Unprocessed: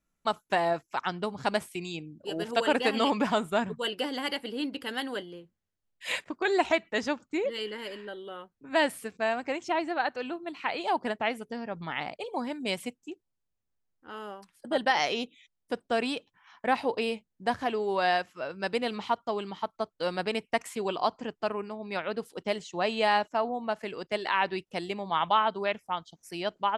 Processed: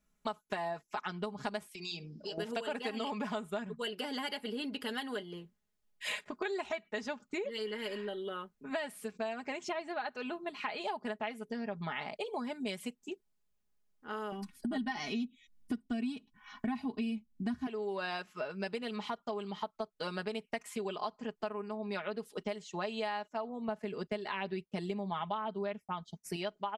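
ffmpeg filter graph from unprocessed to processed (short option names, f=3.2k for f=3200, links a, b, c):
-filter_complex "[0:a]asettb=1/sr,asplit=3[a][b][c];[a]atrim=end=1.744[d];[b]atrim=start=1.74:end=2.38,asetpts=PTS-STARTPTS,afade=t=in:d=0.004:c=qsin,afade=t=out:st=0.636:d=0.004:c=qsin,bandreject=f=60:t=h:w=6,bandreject=f=120:t=h:w=6,bandreject=f=180:t=h:w=6,bandreject=f=240:t=h:w=6,bandreject=f=300:t=h:w=6,bandreject=f=360:t=h:w=6,bandreject=f=420:t=h:w=6,bandreject=f=480:t=h:w=6,acompressor=threshold=-42dB:ratio=6:attack=3.2:release=140:knee=1:detection=peak,lowpass=f=5.1k:t=q:w=13[e];[c]atrim=start=2.376[f];[d][e]acrossfade=d=0.004:c1=hsin:c2=qsin[g];[g][f]acrossfade=d=0.004:c1=qsin:c2=hsin,asettb=1/sr,asplit=3[h][i][j];[h]atrim=end=14.324[k];[i]atrim=start=14.32:end=17.67,asetpts=PTS-STARTPTS,afade=t=in:d=0.004:c=qsin,afade=t=out:st=3.346:d=0.004:c=qsin,lowshelf=f=320:t=q:w=3:g=12.5,aecho=1:1:2.7:0.71,atrim=end_sample=147735[l];[j]atrim=start=17.666[m];[k][l]acrossfade=d=0.004:c1=hsin:c2=qsin[n];[n][m]acrossfade=d=0.004:c1=qsin:c2=hsin,asettb=1/sr,asplit=3[o][p][q];[o]atrim=end=23.684[r];[p]atrim=start=23.68:end=26.36,asetpts=PTS-STARTPTS,afade=t=in:d=0.004:c=qsin,afade=t=out:st=2.676:d=0.004:c=qsin,agate=range=-33dB:threshold=-53dB:ratio=3:release=100:detection=peak,equalizer=f=120:w=0.3:g=9.5[s];[q]atrim=start=26.356[t];[r][s]acrossfade=d=0.004:c1=hsin:c2=qsin[u];[u][t]acrossfade=d=0.004:c1=qsin:c2=hsin,aecho=1:1:4.8:0.67,acompressor=threshold=-36dB:ratio=6,volume=1dB"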